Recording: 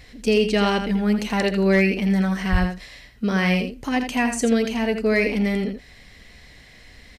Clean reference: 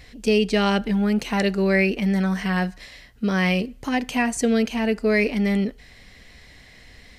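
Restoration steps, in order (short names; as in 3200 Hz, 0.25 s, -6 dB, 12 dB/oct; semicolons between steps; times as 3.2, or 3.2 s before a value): clip repair -10 dBFS; 2.51–2.63 HPF 140 Hz 24 dB/oct; inverse comb 83 ms -8 dB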